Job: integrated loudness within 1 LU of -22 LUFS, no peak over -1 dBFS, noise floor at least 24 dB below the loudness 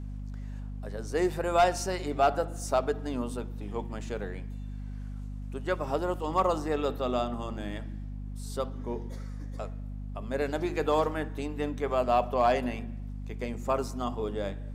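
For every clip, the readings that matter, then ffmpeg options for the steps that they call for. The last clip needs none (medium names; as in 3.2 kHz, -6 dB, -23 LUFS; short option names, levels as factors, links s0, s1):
hum 50 Hz; highest harmonic 250 Hz; hum level -35 dBFS; loudness -31.5 LUFS; peak level -14.5 dBFS; loudness target -22.0 LUFS
-> -af "bandreject=f=50:t=h:w=6,bandreject=f=100:t=h:w=6,bandreject=f=150:t=h:w=6,bandreject=f=200:t=h:w=6,bandreject=f=250:t=h:w=6"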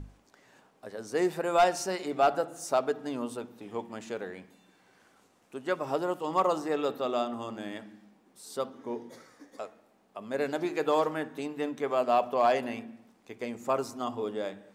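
hum not found; loudness -31.0 LUFS; peak level -15.0 dBFS; loudness target -22.0 LUFS
-> -af "volume=2.82"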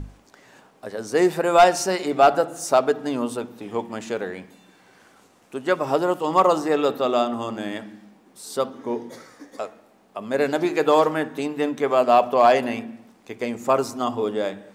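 loudness -22.0 LUFS; peak level -6.0 dBFS; noise floor -56 dBFS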